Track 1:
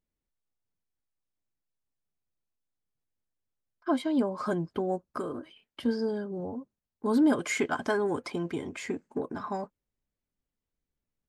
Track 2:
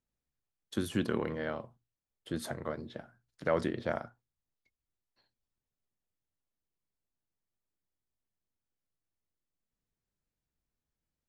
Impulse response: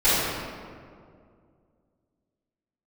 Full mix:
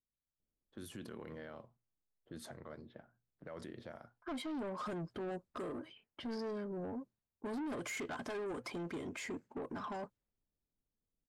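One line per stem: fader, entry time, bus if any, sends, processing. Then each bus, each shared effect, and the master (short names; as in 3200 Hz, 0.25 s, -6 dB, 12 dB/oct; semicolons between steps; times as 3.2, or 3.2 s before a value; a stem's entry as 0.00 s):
-2.5 dB, 0.40 s, no send, notches 60/120 Hz; limiter -23.5 dBFS, peak gain reduction 8 dB; soft clip -34 dBFS, distortion -9 dB
-10.0 dB, 0.00 s, no send, high shelf 9900 Hz +8.5 dB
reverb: off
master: low-pass opened by the level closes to 680 Hz, open at -41.5 dBFS; limiter -37.5 dBFS, peak gain reduction 11 dB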